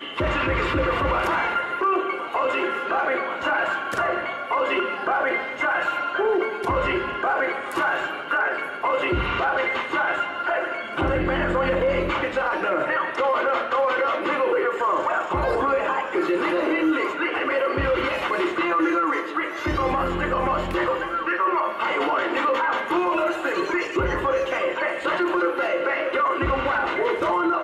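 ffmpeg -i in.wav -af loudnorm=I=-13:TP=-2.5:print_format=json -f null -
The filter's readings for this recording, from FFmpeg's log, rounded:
"input_i" : "-23.1",
"input_tp" : "-10.7",
"input_lra" : "1.2",
"input_thresh" : "-33.1",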